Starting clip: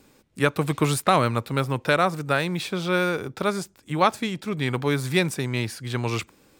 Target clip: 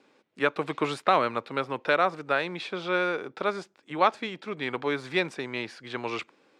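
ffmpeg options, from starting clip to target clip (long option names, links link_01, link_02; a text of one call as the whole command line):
ffmpeg -i in.wav -af "highpass=330,lowpass=3600,volume=-2dB" out.wav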